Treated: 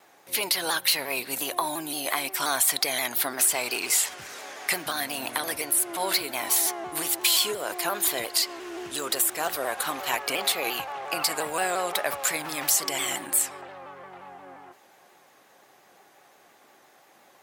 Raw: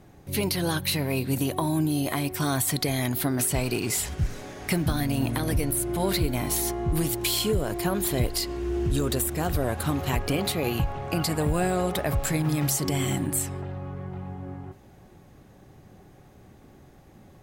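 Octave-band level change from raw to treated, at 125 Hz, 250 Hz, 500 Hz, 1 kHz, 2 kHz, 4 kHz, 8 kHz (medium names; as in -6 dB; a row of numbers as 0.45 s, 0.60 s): -25.0 dB, -12.5 dB, -3.5 dB, +2.5 dB, +5.0 dB, +5.0 dB, +5.0 dB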